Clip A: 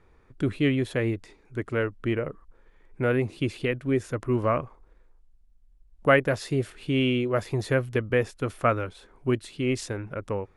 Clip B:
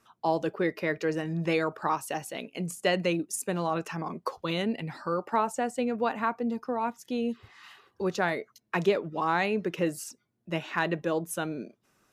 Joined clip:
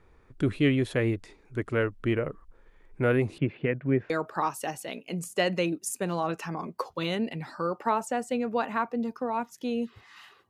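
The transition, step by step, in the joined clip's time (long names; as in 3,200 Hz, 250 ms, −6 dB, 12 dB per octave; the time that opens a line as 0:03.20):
clip A
0:03.38–0:04.10: loudspeaker in its box 130–2,300 Hz, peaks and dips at 150 Hz +8 dB, 350 Hz −3 dB, 1,200 Hz −5 dB
0:04.10: continue with clip B from 0:01.57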